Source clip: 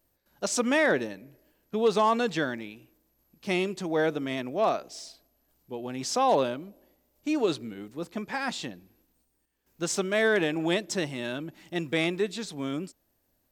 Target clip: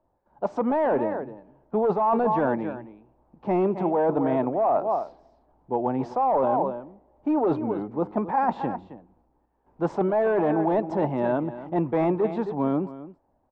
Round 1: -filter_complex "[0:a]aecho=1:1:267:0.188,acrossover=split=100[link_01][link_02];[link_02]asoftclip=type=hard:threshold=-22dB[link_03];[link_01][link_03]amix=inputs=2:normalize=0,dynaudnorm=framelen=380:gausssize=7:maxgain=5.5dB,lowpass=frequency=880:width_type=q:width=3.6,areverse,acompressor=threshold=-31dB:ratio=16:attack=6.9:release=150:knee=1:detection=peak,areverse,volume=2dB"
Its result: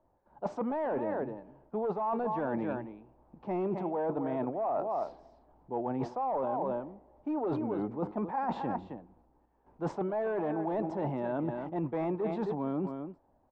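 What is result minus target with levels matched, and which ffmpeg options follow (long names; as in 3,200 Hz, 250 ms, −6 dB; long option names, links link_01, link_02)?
downward compressor: peak gain reduction +10 dB
-filter_complex "[0:a]aecho=1:1:267:0.188,acrossover=split=100[link_01][link_02];[link_02]asoftclip=type=hard:threshold=-22dB[link_03];[link_01][link_03]amix=inputs=2:normalize=0,dynaudnorm=framelen=380:gausssize=7:maxgain=5.5dB,lowpass=frequency=880:width_type=q:width=3.6,areverse,acompressor=threshold=-20.5dB:ratio=16:attack=6.9:release=150:knee=1:detection=peak,areverse,volume=2dB"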